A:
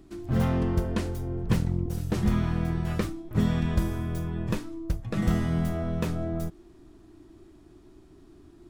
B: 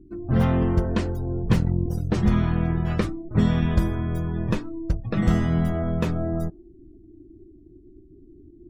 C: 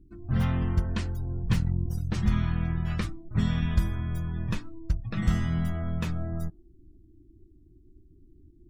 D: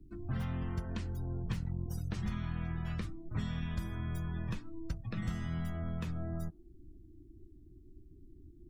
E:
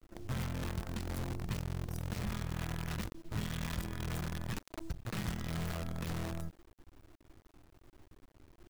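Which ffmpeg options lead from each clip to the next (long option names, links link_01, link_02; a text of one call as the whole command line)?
ffmpeg -i in.wav -af "afftdn=noise_reduction=35:noise_floor=-48,volume=4.5dB" out.wav
ffmpeg -i in.wav -af "equalizer=frequency=450:width_type=o:width=2.1:gain=-13.5,volume=-1.5dB" out.wav
ffmpeg -i in.wav -filter_complex "[0:a]acrossover=split=120|490[link_01][link_02][link_03];[link_01]acompressor=threshold=-39dB:ratio=4[link_04];[link_02]acompressor=threshold=-40dB:ratio=4[link_05];[link_03]acompressor=threshold=-49dB:ratio=4[link_06];[link_04][link_05][link_06]amix=inputs=3:normalize=0" out.wav
ffmpeg -i in.wav -af "acrusher=bits=7:dc=4:mix=0:aa=0.000001,volume=-2dB" out.wav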